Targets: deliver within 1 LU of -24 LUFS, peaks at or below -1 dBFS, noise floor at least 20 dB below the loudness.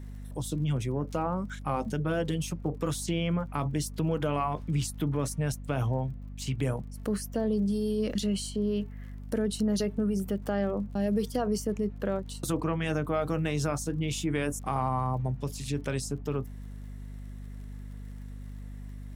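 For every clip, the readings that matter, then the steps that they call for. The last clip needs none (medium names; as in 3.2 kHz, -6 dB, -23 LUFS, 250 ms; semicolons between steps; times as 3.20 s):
tick rate 38 per s; hum 50 Hz; highest harmonic 250 Hz; hum level -39 dBFS; loudness -31.0 LUFS; peak level -16.0 dBFS; loudness target -24.0 LUFS
-> de-click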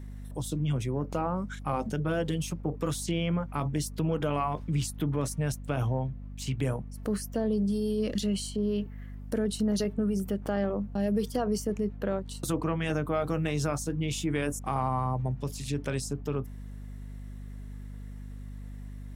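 tick rate 0.26 per s; hum 50 Hz; highest harmonic 250 Hz; hum level -39 dBFS
-> de-hum 50 Hz, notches 5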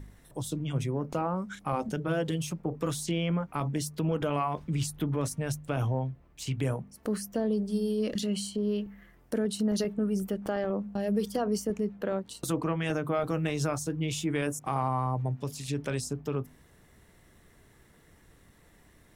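hum not found; loudness -31.5 LUFS; peak level -16.0 dBFS; loudness target -24.0 LUFS
-> trim +7.5 dB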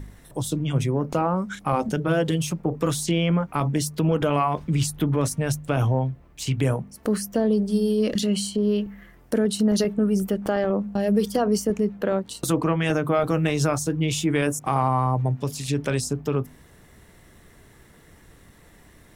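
loudness -24.0 LUFS; peak level -8.5 dBFS; noise floor -52 dBFS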